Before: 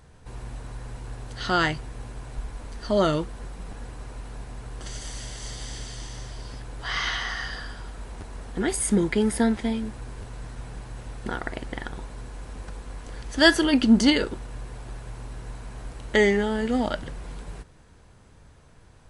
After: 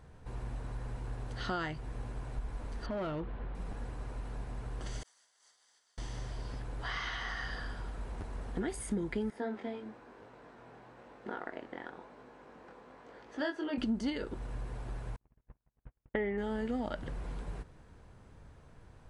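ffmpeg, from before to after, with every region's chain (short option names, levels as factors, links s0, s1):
-filter_complex "[0:a]asettb=1/sr,asplit=3[s0][s1][s2];[s0]atrim=end=2.864[s3];[s1]atrim=start=2.86:end=3.55,asetpts=PTS-STARTPTS,afade=t=in:d=0.004:c=qsin,afade=t=out:st=0.686:d=0.004:c=qsin,lowpass=f=3400:w=0.5412,lowpass=f=3400:w=1.3066,acompressor=threshold=0.0251:ratio=2:attack=3.2:release=140:knee=1:detection=peak,volume=26.6,asoftclip=hard,volume=0.0376[s4];[s2]atrim=start=3.546[s5];[s3][s4]acrossfade=d=0.004:c1=hsin:c2=qsin[s6];[s6][s5]acrossfade=d=0.004:c1=qsin:c2=hsin,asettb=1/sr,asplit=3[s7][s8][s9];[s7]atrim=end=5.034[s10];[s8]atrim=start=5.03:end=5.98,asetpts=PTS-STARTPTS,afade=t=in:d=0.004:c=qsin,afade=t=out:st=0.946:d=0.004:c=qsin,highpass=1400,equalizer=f=2600:t=o:w=1.1:g=-9.5,agate=range=0.0224:threshold=0.02:ratio=3:release=100:detection=peak[s11];[s9]atrim=start=5.976[s12];[s10][s11]acrossfade=d=0.004:c1=hsin:c2=qsin[s13];[s13][s12]acrossfade=d=0.004:c1=qsin:c2=hsin,asettb=1/sr,asplit=3[s14][s15][s16];[s14]atrim=end=9.304[s17];[s15]atrim=start=9.3:end=13.78,asetpts=PTS-STARTPTS,afade=t=in:d=0.004:c=qsin,afade=t=out:st=4.476:d=0.004:c=qsin,highpass=300,lowpass=7100,highshelf=f=3300:g=-10,flanger=delay=19:depth=5.3:speed=1[s18];[s16]atrim=start=13.776[s19];[s17][s18]acrossfade=d=0.004:c1=hsin:c2=qsin[s20];[s20][s19]acrossfade=d=0.004:c1=qsin:c2=hsin,asettb=1/sr,asplit=3[s21][s22][s23];[s21]atrim=end=15.164[s24];[s22]atrim=start=15.16:end=16.38,asetpts=PTS-STARTPTS,afade=t=in:d=0.004:c=qsin,afade=t=out:st=1.216:d=0.004:c=qsin,agate=range=0.00316:threshold=0.0251:ratio=16:release=100:detection=peak,lowpass=f=2600:w=0.5412,lowpass=f=2600:w=1.3066[s25];[s23]atrim=start=16.376[s26];[s24][s25]acrossfade=d=0.004:c1=hsin:c2=qsin[s27];[s27][s26]acrossfade=d=0.004:c1=qsin:c2=hsin,acompressor=threshold=0.0316:ratio=4,highshelf=f=3000:g=-9.5,volume=0.75"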